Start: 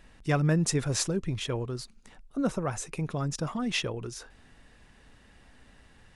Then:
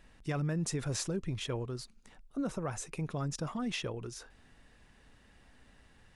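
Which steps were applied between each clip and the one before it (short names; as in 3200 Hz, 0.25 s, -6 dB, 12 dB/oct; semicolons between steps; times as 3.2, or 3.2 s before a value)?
limiter -21.5 dBFS, peak gain reduction 7 dB; gain -4.5 dB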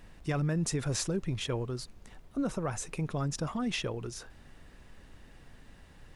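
added noise brown -55 dBFS; gain +3 dB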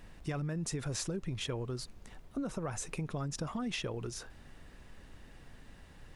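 compressor, threshold -33 dBFS, peak gain reduction 6.5 dB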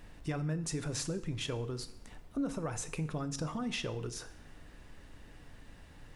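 FDN reverb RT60 0.72 s, low-frequency decay 1.05×, high-frequency decay 0.9×, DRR 10 dB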